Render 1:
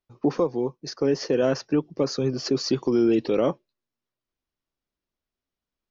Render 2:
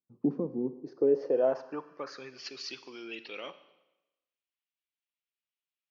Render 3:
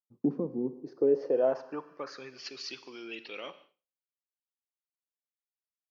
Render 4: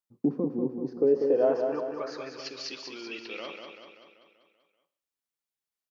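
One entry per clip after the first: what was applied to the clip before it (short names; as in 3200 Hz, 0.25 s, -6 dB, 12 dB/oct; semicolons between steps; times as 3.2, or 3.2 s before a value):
Schroeder reverb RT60 1 s, combs from 31 ms, DRR 13 dB; band-pass sweep 220 Hz -> 2700 Hz, 0.59–2.48
expander -53 dBFS
feedback echo 0.193 s, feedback 55%, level -5.5 dB; gain +2 dB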